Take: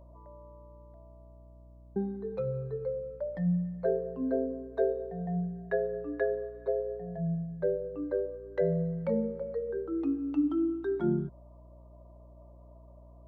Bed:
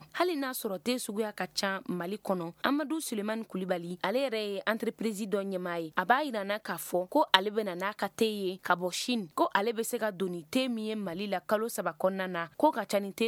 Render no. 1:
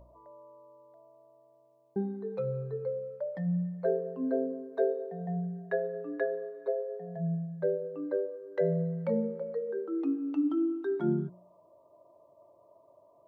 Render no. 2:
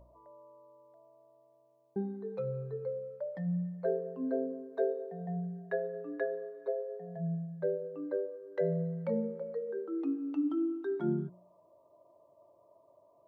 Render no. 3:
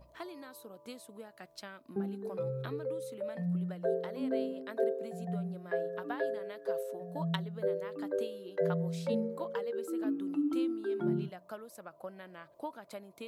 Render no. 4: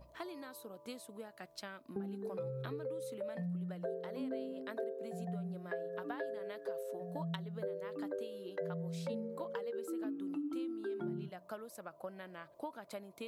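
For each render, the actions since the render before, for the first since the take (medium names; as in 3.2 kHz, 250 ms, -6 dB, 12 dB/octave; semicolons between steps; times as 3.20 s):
de-hum 60 Hz, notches 7
trim -3 dB
add bed -16 dB
compression 4:1, threshold -38 dBFS, peak gain reduction 11 dB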